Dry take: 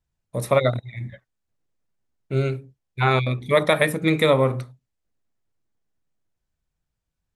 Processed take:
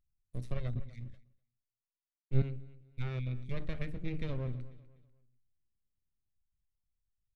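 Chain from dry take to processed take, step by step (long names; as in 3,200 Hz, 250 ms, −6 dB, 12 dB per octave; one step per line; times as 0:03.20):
half-wave rectification
treble cut that deepens with the level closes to 2,800 Hz, closed at −21 dBFS
in parallel at −2.5 dB: brickwall limiter −14 dBFS, peak gain reduction 9 dB
on the sum: guitar amp tone stack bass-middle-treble 10-0-1
on a send: repeating echo 247 ms, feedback 33%, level −18 dB
0:00.75–0:02.42: on the sum: multiband upward and downward expander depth 100%
level +1 dB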